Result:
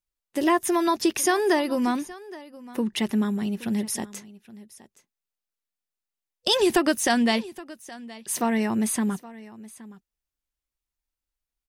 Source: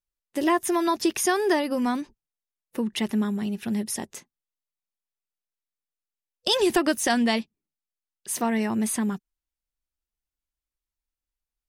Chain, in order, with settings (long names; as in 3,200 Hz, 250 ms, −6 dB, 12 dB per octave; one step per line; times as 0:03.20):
single-tap delay 820 ms −19 dB
level +1 dB